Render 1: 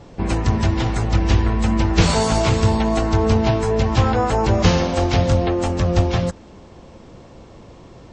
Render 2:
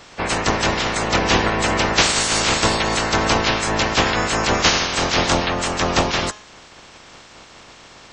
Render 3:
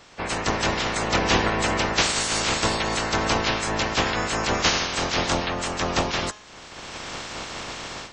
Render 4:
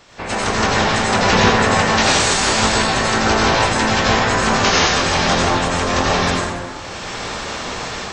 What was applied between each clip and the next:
spectral limiter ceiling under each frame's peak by 26 dB; de-hum 210.5 Hz, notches 33; gain -1.5 dB
AGC gain up to 16 dB; gain -6.5 dB
reverb RT60 1.7 s, pre-delay 73 ms, DRR -6 dB; gain +1.5 dB

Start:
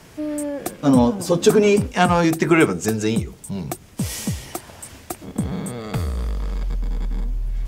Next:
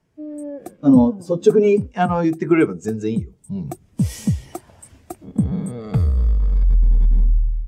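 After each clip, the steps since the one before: AGC gain up to 9.5 dB; spectral expander 1.5:1; gain -1 dB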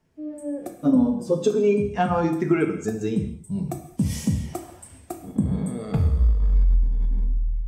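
compressor, threshold -16 dBFS, peak gain reduction 9 dB; non-linear reverb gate 0.26 s falling, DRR 4 dB; gain -1.5 dB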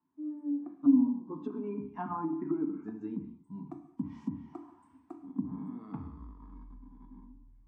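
double band-pass 530 Hz, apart 1.8 oct; treble ducked by the level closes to 660 Hz, closed at -27.5 dBFS; gain -1 dB

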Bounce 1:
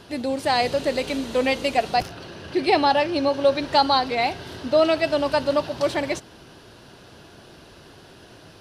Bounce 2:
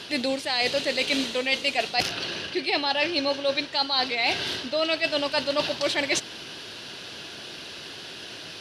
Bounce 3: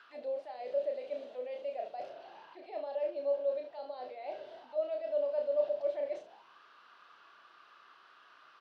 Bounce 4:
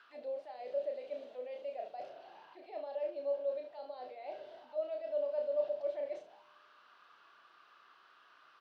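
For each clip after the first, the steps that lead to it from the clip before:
weighting filter D; reverse; compressor 10:1, threshold -24 dBFS, peak gain reduction 16.5 dB; reverse; gain +3 dB
early reflections 32 ms -5.5 dB, 72 ms -15.5 dB; transient shaper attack -2 dB, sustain +4 dB; auto-wah 590–1500 Hz, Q 9.1, down, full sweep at -22.5 dBFS; gain -2.5 dB
resonator 150 Hz, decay 1.7 s, mix 40%; gain +1 dB

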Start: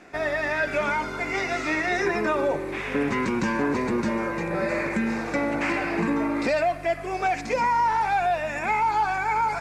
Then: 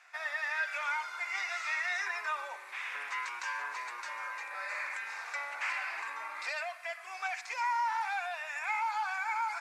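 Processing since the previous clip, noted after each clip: HPF 970 Hz 24 dB/oct; gain -6 dB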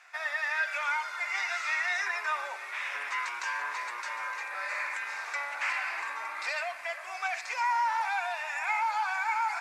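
echo with dull and thin repeats by turns 0.457 s, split 1000 Hz, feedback 81%, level -12.5 dB; gain +3.5 dB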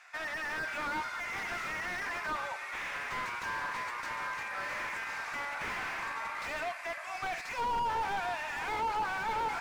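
slew limiter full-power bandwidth 30 Hz

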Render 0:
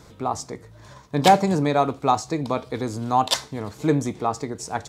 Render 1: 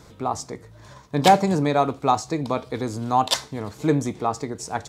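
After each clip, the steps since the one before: nothing audible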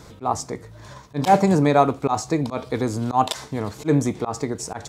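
auto swell 0.104 s; dynamic EQ 4000 Hz, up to -4 dB, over -44 dBFS, Q 1.3; gain +4 dB

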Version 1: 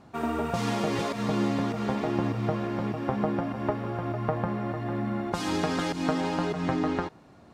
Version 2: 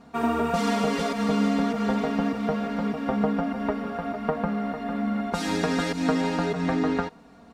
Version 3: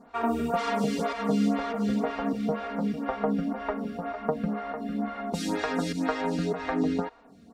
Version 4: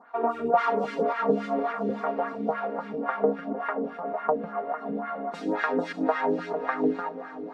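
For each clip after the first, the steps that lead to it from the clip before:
comb 4.3 ms, depth 96%
photocell phaser 2 Hz
diffused feedback echo 0.553 s, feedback 43%, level -12 dB; LFO band-pass sine 3.6 Hz 390–1600 Hz; gain +9 dB

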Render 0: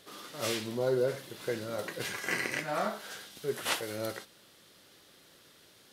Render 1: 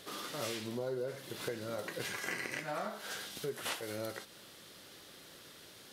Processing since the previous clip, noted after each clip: compressor 4:1, threshold -42 dBFS, peak gain reduction 14.5 dB; gain +4.5 dB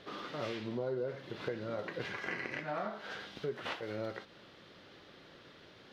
air absorption 250 m; gain +2 dB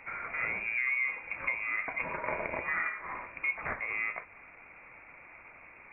inverted band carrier 2600 Hz; gain +5 dB

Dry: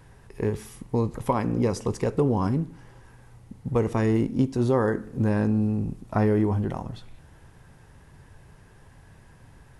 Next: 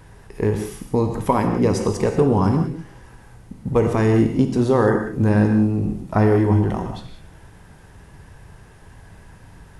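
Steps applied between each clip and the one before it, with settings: non-linear reverb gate 0.21 s flat, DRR 4.5 dB; gain +5.5 dB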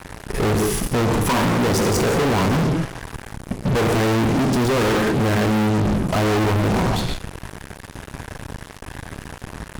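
in parallel at +1 dB: level quantiser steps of 10 dB; on the sum: fuzz box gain 33 dB, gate -38 dBFS; gain -4 dB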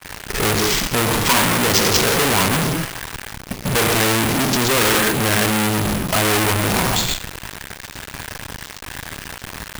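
careless resampling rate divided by 4×, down none, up hold; tilt shelf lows -7 dB, about 1300 Hz; expander -37 dBFS; gain +4.5 dB

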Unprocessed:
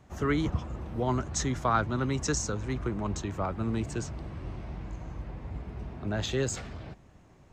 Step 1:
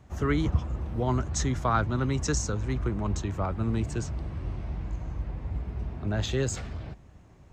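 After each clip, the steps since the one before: bell 62 Hz +7 dB 2 oct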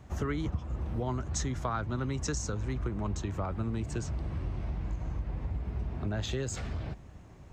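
compressor 4:1, threshold -33 dBFS, peak gain reduction 12.5 dB; gain +2.5 dB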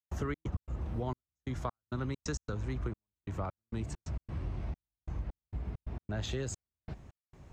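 step gate ".xx.x.xxxx...xx." 133 bpm -60 dB; gain -2.5 dB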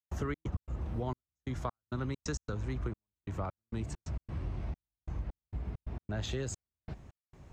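nothing audible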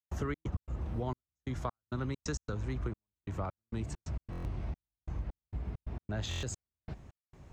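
stuck buffer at 4.31/6.29, samples 1024, times 5

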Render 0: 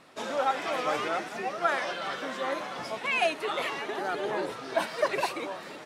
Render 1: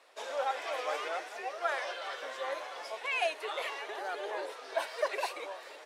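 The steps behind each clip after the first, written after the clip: Chebyshev high-pass 470 Hz, order 3; notch 1300 Hz, Q 17; gain -4.5 dB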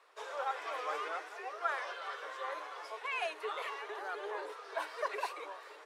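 rippled Chebyshev high-pass 300 Hz, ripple 9 dB; gain +2 dB; MP3 96 kbps 48000 Hz

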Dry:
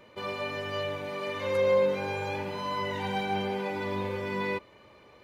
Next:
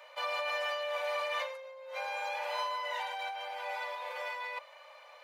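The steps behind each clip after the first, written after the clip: negative-ratio compressor -35 dBFS, ratio -1; steep high-pass 540 Hz 72 dB/oct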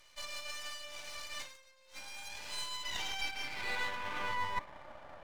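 band-pass sweep 6000 Hz -> 720 Hz, 2.3–4.92; half-wave rectifier; gain +12 dB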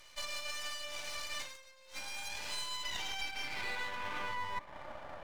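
compressor 4:1, threshold -39 dBFS, peak gain reduction 9.5 dB; gain +4.5 dB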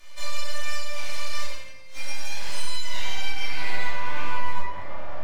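resonator 140 Hz, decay 0.59 s, harmonics all, mix 70%; shoebox room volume 520 m³, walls mixed, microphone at 3.2 m; gain +8.5 dB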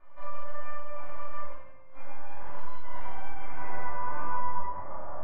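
ladder low-pass 1400 Hz, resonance 35%; gain +3 dB

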